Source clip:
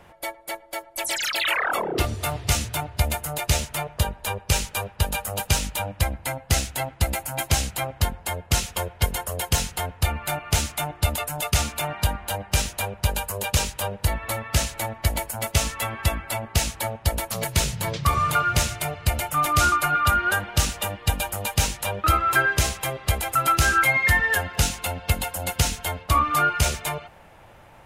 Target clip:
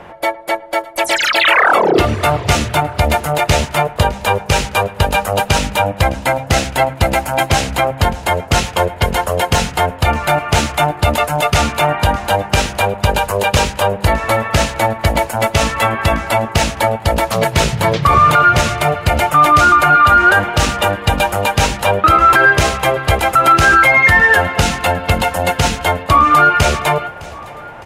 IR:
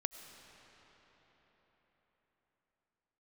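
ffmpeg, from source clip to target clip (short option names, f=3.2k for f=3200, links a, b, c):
-filter_complex "[0:a]lowpass=f=1.6k:p=1,lowshelf=f=120:g=-11.5,bandreject=f=66.94:t=h:w=4,bandreject=f=133.88:t=h:w=4,bandreject=f=200.82:t=h:w=4,bandreject=f=267.76:t=h:w=4,asplit=2[a][b];[b]asoftclip=type=tanh:threshold=-21dB,volume=-11.5dB[c];[a][c]amix=inputs=2:normalize=0,aecho=1:1:610|1220|1830:0.0794|0.0373|0.0175,alimiter=level_in=16.5dB:limit=-1dB:release=50:level=0:latency=1,volume=-1dB"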